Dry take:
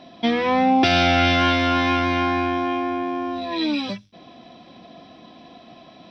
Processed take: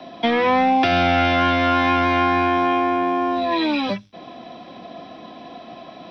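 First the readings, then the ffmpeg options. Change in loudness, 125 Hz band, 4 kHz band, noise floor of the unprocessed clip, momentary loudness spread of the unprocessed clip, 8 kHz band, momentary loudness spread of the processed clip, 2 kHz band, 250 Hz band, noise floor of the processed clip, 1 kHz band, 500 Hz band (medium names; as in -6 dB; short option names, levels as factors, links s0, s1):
+1.5 dB, -1.0 dB, -2.5 dB, -48 dBFS, 10 LU, no reading, 21 LU, +1.0 dB, +0.5 dB, -41 dBFS, +3.5 dB, +3.0 dB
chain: -filter_complex "[0:a]equalizer=f=810:w=0.32:g=7.5,acrossover=split=310|1500|4100[s0][s1][s2][s3];[s0]acompressor=threshold=0.0794:ratio=4[s4];[s1]acompressor=threshold=0.112:ratio=4[s5];[s2]acompressor=threshold=0.0501:ratio=4[s6];[s3]acompressor=threshold=0.00631:ratio=4[s7];[s4][s5][s6][s7]amix=inputs=4:normalize=0,acrossover=split=210|400|1300[s8][s9][s10][s11];[s9]volume=28.2,asoftclip=hard,volume=0.0355[s12];[s8][s12][s10][s11]amix=inputs=4:normalize=0,volume=1.12"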